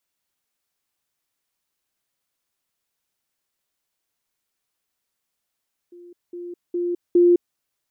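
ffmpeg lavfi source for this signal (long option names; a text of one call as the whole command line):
ffmpeg -f lavfi -i "aevalsrc='pow(10,(-41+10*floor(t/0.41))/20)*sin(2*PI*350*t)*clip(min(mod(t,0.41),0.21-mod(t,0.41))/0.005,0,1)':duration=1.64:sample_rate=44100" out.wav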